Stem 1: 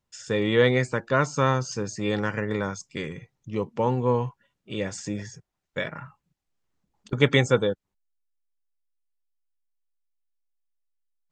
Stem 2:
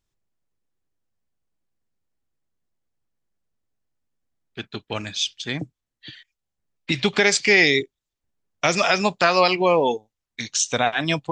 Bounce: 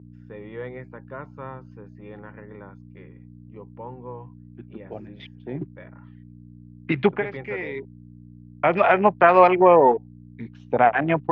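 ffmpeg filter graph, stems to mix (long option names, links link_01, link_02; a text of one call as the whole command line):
ffmpeg -i stem1.wav -i stem2.wav -filter_complex "[0:a]aemphasis=mode=production:type=50fm,agate=range=-8dB:threshold=-44dB:ratio=16:detection=peak,volume=-17.5dB,asplit=2[link_01][link_02];[1:a]afwtdn=0.0501,acrusher=bits=7:mode=log:mix=0:aa=0.000001,volume=0.5dB[link_03];[link_02]apad=whole_len=499195[link_04];[link_03][link_04]sidechaincompress=threshold=-51dB:ratio=5:attack=31:release=982[link_05];[link_01][link_05]amix=inputs=2:normalize=0,equalizer=frequency=730:width_type=o:width=1.1:gain=4.5,aeval=exprs='val(0)+0.0112*(sin(2*PI*60*n/s)+sin(2*PI*2*60*n/s)/2+sin(2*PI*3*60*n/s)/3+sin(2*PI*4*60*n/s)/4+sin(2*PI*5*60*n/s)/5)':channel_layout=same,highpass=130,equalizer=frequency=130:width_type=q:width=4:gain=4,equalizer=frequency=380:width_type=q:width=4:gain=4,equalizer=frequency=930:width_type=q:width=4:gain=3,lowpass=frequency=2300:width=0.5412,lowpass=frequency=2300:width=1.3066" out.wav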